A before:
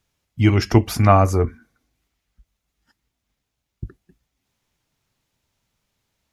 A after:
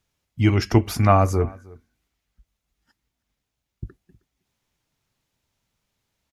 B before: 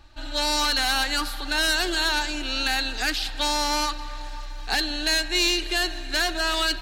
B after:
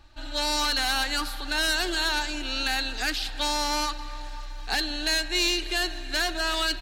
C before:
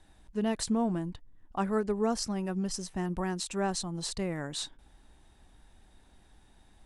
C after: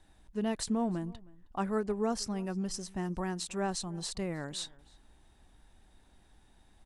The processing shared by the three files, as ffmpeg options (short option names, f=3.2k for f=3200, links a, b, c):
-filter_complex "[0:a]asplit=2[a][b];[b]adelay=314.9,volume=-23dB,highshelf=f=4k:g=-7.08[c];[a][c]amix=inputs=2:normalize=0,volume=-2.5dB"